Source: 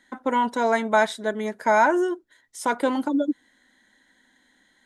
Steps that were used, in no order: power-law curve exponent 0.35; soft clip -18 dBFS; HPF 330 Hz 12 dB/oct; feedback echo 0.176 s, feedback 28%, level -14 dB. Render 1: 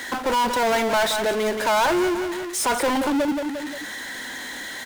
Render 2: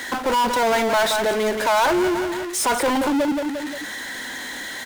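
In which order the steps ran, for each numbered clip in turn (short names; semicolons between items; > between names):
HPF > soft clip > feedback echo > power-law curve; feedback echo > soft clip > HPF > power-law curve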